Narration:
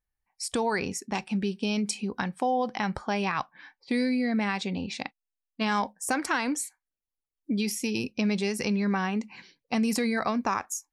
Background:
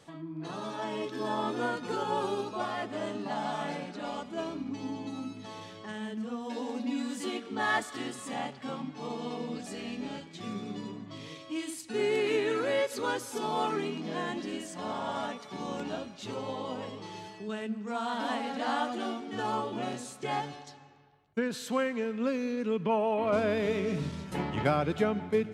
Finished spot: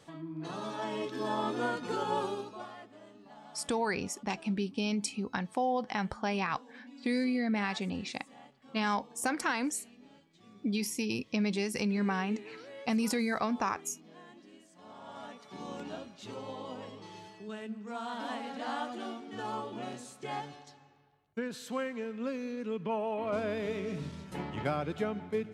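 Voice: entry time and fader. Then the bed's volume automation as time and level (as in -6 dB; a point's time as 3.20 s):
3.15 s, -4.0 dB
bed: 2.18 s -1 dB
3.01 s -19 dB
14.70 s -19 dB
15.58 s -5.5 dB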